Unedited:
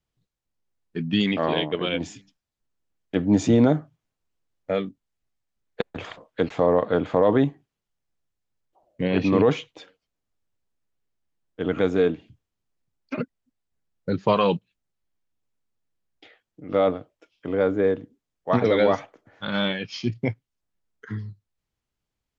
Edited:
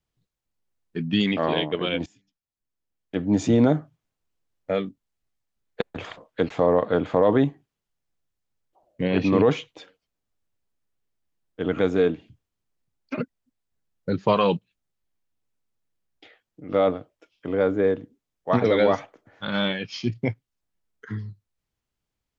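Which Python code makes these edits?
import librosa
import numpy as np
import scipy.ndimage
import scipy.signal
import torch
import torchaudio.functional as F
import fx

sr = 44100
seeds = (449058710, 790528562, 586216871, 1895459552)

y = fx.edit(x, sr, fx.fade_in_from(start_s=2.06, length_s=1.7, floor_db=-20.0), tone=tone)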